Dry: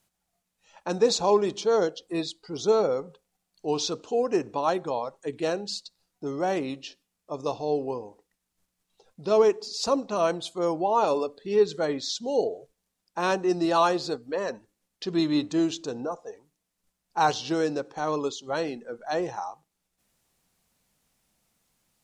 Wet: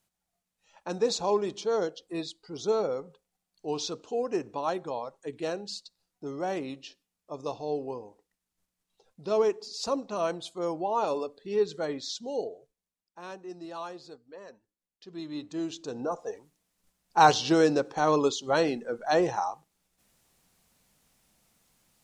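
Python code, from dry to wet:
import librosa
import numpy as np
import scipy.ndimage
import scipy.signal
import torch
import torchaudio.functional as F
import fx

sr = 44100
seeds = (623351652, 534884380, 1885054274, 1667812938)

y = fx.gain(x, sr, db=fx.line((12.19, -5.0), (13.2, -17.0), (15.05, -17.0), (15.83, -5.5), (16.25, 4.0)))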